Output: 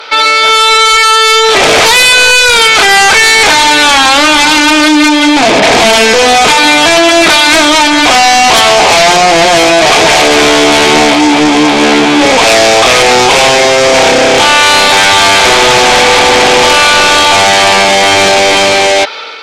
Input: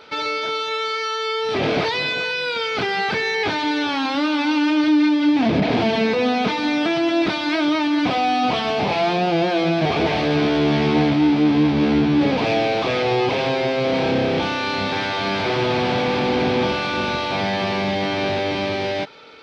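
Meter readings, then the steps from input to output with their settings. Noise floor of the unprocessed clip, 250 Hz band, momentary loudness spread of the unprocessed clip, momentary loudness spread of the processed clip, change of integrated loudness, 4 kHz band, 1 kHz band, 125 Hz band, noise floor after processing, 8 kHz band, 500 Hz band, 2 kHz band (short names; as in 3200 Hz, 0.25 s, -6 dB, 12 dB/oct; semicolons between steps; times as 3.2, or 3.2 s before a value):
-25 dBFS, +7.5 dB, 5 LU, 3 LU, +16.0 dB, +20.5 dB, +17.0 dB, +3.0 dB, -7 dBFS, n/a, +13.5 dB, +19.0 dB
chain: HPF 610 Hz 12 dB/oct; high shelf 2900 Hz +3 dB; AGC gain up to 4.5 dB; sine folder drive 10 dB, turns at -6.5 dBFS; gain +5 dB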